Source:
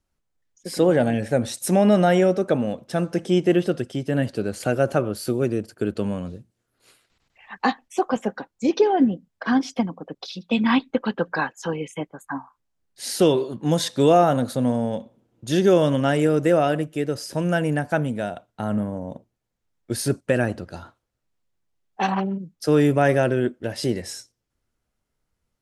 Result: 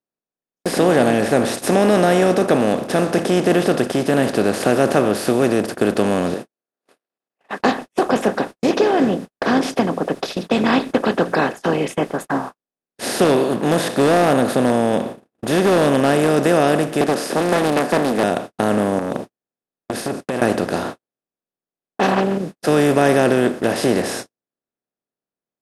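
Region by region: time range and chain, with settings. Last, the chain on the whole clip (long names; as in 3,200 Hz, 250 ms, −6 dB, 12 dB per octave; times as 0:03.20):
0:06.34–0:07.60: high-pass filter 490 Hz + high-shelf EQ 2,200 Hz −7 dB
0:13.24–0:16.29: parametric band 5,600 Hz −8.5 dB 0.98 octaves + hard clipping −12.5 dBFS
0:17.01–0:18.24: high-pass filter 220 Hz 24 dB per octave + hard clipping −13 dBFS + highs frequency-modulated by the lows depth 0.52 ms
0:18.99–0:20.42: downward compressor 16 to 1, threshold −33 dBFS + saturating transformer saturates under 800 Hz
whole clip: compressor on every frequency bin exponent 0.4; low-shelf EQ 110 Hz −5.5 dB; noise gate −25 dBFS, range −55 dB; level −1.5 dB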